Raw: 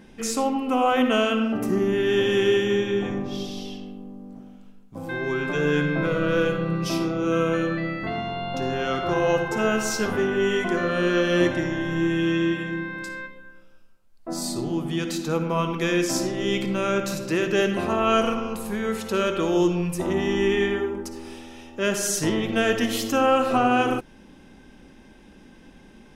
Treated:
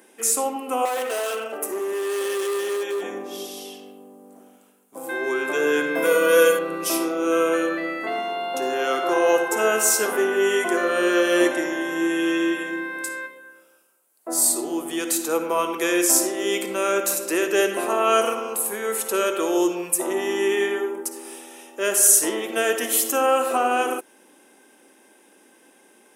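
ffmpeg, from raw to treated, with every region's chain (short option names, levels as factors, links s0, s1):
-filter_complex "[0:a]asettb=1/sr,asplit=3[s0][s1][s2];[s0]atrim=end=0.854[s3];[s1]atrim=start=0.85:end=3.03,asetpts=PTS-STARTPTS,afade=t=in:d=0.004:c=qsin,afade=t=out:st=2.176:d=0.004:c=qsin,lowshelf=f=330:t=q:w=1.5:g=-8.5,asoftclip=type=hard:threshold=0.0708[s4];[s2]atrim=start=3.026[s5];[s3][s4]acrossfade=d=0.004:c1=hsin:c2=qsin[s6];[s6][s5]acrossfade=d=0.004:c1=qsin:c2=hsin,asettb=1/sr,asplit=3[s7][s8][s9];[s7]atrim=end=5.954[s10];[s8]atrim=start=5.95:end=6.59,asetpts=PTS-STARTPTS,afade=t=in:d=0.004:c=qsin,afade=t=out:st=0.636:d=0.004:c=qsin,aemphasis=mode=production:type=50fm,aecho=1:1:4.2:0.85,atrim=end_sample=28224[s11];[s9]atrim=start=6.586[s12];[s10][s11]acrossfade=d=0.004:c1=hsin:c2=qsin[s13];[s13][s12]acrossfade=d=0.004:c1=qsin:c2=hsin,highpass=f=330:w=0.5412,highpass=f=330:w=1.3066,highshelf=f=6800:t=q:w=1.5:g=13,dynaudnorm=f=700:g=11:m=1.58"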